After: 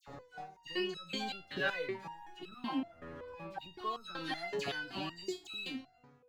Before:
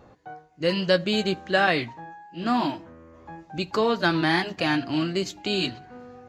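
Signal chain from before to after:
fade-out on the ending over 1.89 s
0:01.38–0:03.84: Butterworth low-pass 4,100 Hz
leveller curve on the samples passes 1
volume swells 166 ms
downward compressor 6 to 1, threshold −36 dBFS, peak gain reduction 19 dB
all-pass dispersion lows, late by 77 ms, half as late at 2,000 Hz
step-sequenced resonator 5.3 Hz 140–1,300 Hz
level +17.5 dB

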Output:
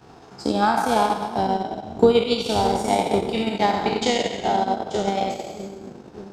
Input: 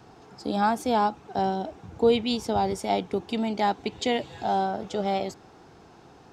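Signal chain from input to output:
peak hold with a decay on every bin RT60 1.27 s
echo with a time of its own for lows and highs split 400 Hz, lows 601 ms, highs 88 ms, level −5 dB
transient designer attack +8 dB, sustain −11 dB

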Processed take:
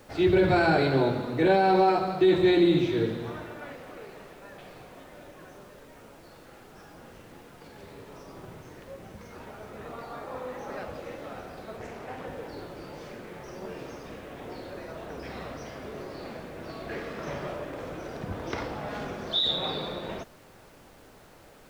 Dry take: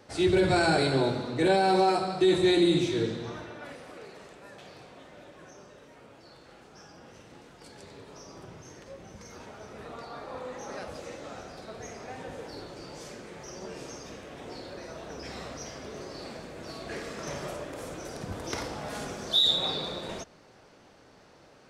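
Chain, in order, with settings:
low-pass filter 3,000 Hz 12 dB per octave
background noise pink −60 dBFS
0:11.78–0:12.27: highs frequency-modulated by the lows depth 0.44 ms
level +2 dB

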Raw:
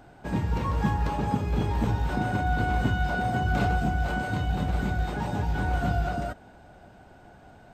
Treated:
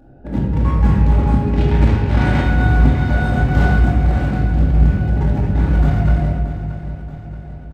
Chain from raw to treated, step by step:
adaptive Wiener filter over 41 samples
0:01.41–0:02.42: parametric band 2,700 Hz +10.5 dB 2.8 octaves
repeating echo 628 ms, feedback 55%, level −13 dB
rectangular room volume 990 cubic metres, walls mixed, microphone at 2.4 metres
level +4 dB

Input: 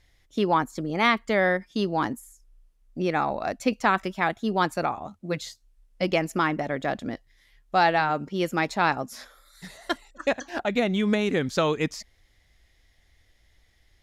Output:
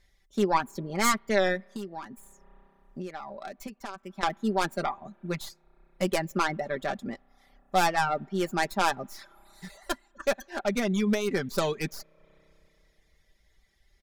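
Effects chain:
stylus tracing distortion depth 0.27 ms
parametric band 2,900 Hz −3.5 dB 0.37 octaves
convolution reverb RT60 2.9 s, pre-delay 31 ms, DRR 21 dB
reverb reduction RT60 0.67 s
0:01.64–0:04.23: downward compressor 16 to 1, threshold −33 dBFS, peak gain reduction 18.5 dB
comb filter 5.1 ms, depth 57%
level −3.5 dB

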